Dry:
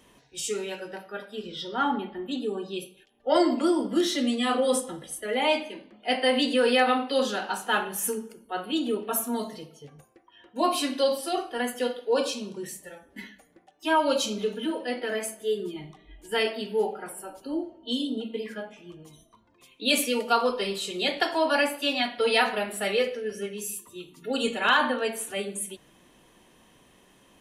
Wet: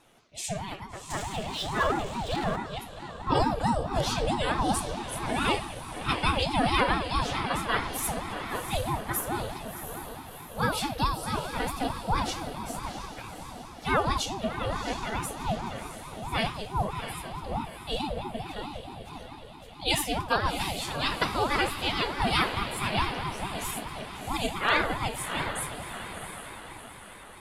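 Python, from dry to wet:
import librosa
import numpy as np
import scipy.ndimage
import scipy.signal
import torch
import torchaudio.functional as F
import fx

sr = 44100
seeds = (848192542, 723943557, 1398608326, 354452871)

y = fx.echo_diffused(x, sr, ms=694, feedback_pct=53, wet_db=-8.0)
y = fx.power_curve(y, sr, exponent=0.7, at=(1.1, 2.56))
y = fx.ring_lfo(y, sr, carrier_hz=400.0, swing_pct=50, hz=4.6)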